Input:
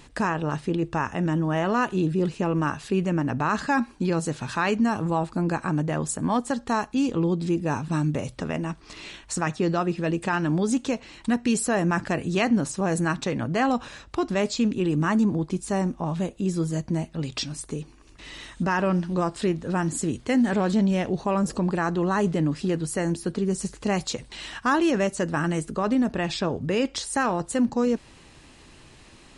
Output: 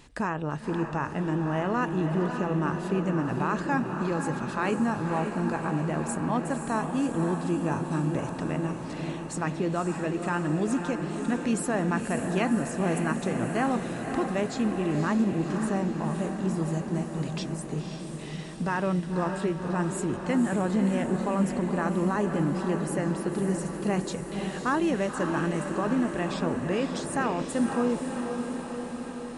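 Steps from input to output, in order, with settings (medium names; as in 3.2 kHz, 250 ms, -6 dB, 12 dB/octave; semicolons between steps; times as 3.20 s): dynamic bell 4.8 kHz, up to -7 dB, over -47 dBFS, Q 0.94; echo that smears into a reverb 541 ms, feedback 68%, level -6 dB; trim -4 dB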